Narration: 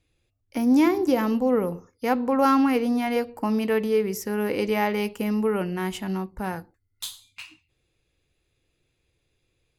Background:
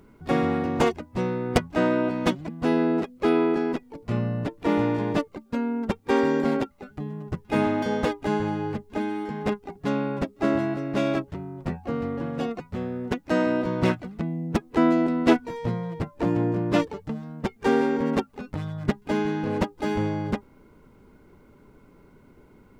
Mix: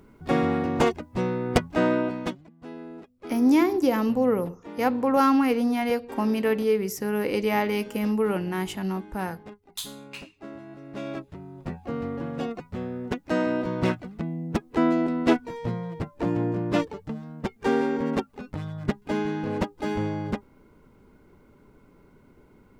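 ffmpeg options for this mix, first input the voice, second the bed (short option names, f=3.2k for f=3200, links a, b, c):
-filter_complex "[0:a]adelay=2750,volume=-0.5dB[a];[1:a]volume=16dB,afade=t=out:st=1.92:d=0.55:silence=0.125893,afade=t=in:st=10.64:d=1.42:silence=0.158489[b];[a][b]amix=inputs=2:normalize=0"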